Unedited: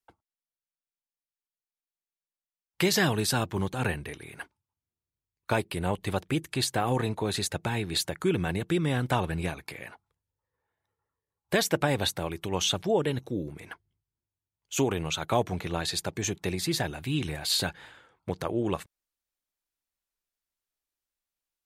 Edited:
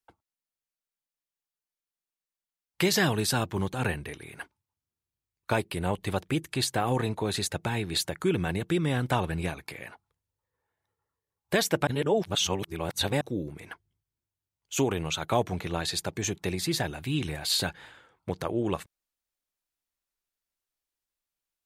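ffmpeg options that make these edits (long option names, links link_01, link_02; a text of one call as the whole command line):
ffmpeg -i in.wav -filter_complex "[0:a]asplit=3[link_01][link_02][link_03];[link_01]atrim=end=11.872[link_04];[link_02]atrim=start=11.868:end=13.212,asetpts=PTS-STARTPTS,areverse[link_05];[link_03]atrim=start=13.208[link_06];[link_04][link_05]acrossfade=duration=0.004:curve1=hsin:curve2=hsin[link_07];[link_07][link_06]acrossfade=duration=0.004:curve1=hsin:curve2=hsin" out.wav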